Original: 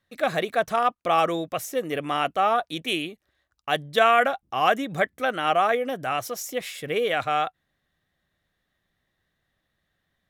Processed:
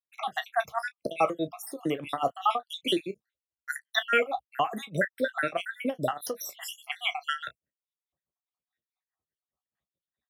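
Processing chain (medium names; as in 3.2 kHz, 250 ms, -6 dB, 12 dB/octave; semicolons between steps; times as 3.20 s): random holes in the spectrogram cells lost 68%; in parallel at -2 dB: peak limiter -20 dBFS, peak gain reduction 10.5 dB; on the sum: high-pass 63 Hz; peaking EQ 510 Hz +3.5 dB 2.9 oct; expander -44 dBFS; level rider gain up to 12 dB; tremolo 4.8 Hz, depth 93%; early reflections 15 ms -11 dB, 32 ms -16.5 dB; three bands compressed up and down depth 40%; trim -8 dB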